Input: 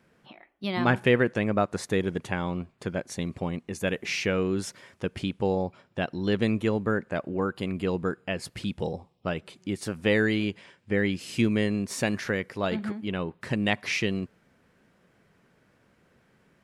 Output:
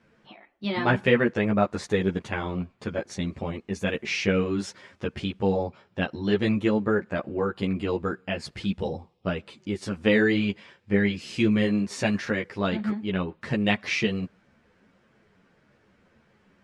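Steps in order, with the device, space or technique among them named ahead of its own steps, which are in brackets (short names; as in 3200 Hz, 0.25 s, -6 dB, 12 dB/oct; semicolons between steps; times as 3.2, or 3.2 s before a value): string-machine ensemble chorus (ensemble effect; LPF 6300 Hz 12 dB/oct); gain +4.5 dB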